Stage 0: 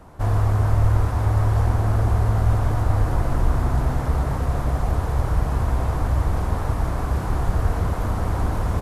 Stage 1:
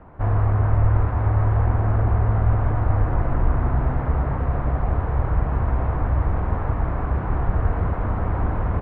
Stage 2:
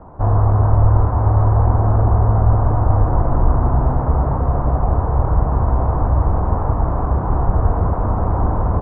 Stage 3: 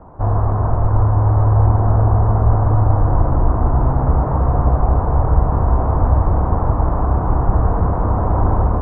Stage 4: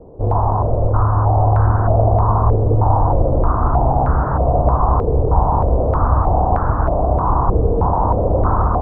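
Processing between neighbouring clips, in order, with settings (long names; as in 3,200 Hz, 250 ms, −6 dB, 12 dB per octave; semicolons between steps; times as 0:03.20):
low-pass filter 2,300 Hz 24 dB per octave
high shelf with overshoot 1,500 Hz −13.5 dB, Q 1.5; level +5 dB
automatic gain control gain up to 3.5 dB; on a send at −7.5 dB: convolution reverb RT60 1.9 s, pre-delay 93 ms; on the sum: level −1 dB
low-pass on a step sequencer 3.2 Hz 460–1,500 Hz; level −1.5 dB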